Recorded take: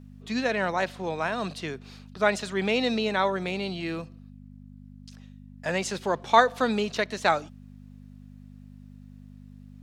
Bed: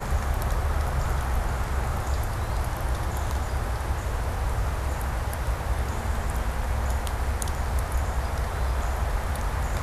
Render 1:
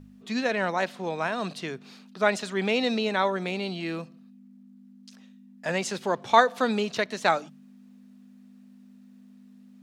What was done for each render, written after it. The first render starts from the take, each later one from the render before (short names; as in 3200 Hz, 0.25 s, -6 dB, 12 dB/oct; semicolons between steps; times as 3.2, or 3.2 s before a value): de-hum 50 Hz, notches 3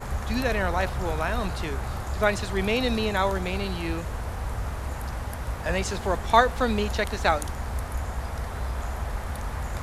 add bed -4 dB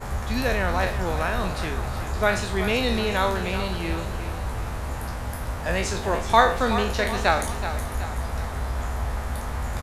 spectral trails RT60 0.43 s; feedback echo 0.376 s, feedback 51%, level -11 dB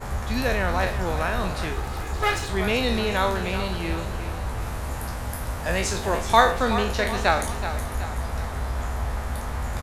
1.72–2.49 minimum comb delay 2.4 ms; 4.6–6.5 high shelf 7800 Hz -> 5000 Hz +5.5 dB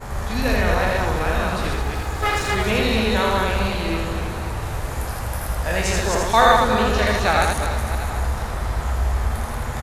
reverse delay 0.15 s, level -1.5 dB; on a send: echo 81 ms -3 dB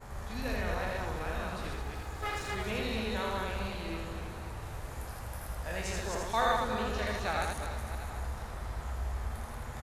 gain -14.5 dB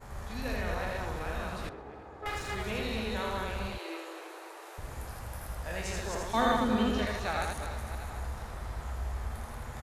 1.69–2.26 band-pass 470 Hz, Q 0.75; 3.78–4.78 brick-wall FIR high-pass 300 Hz; 6.34–7.05 small resonant body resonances 250/3100 Hz, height 14 dB, ringing for 35 ms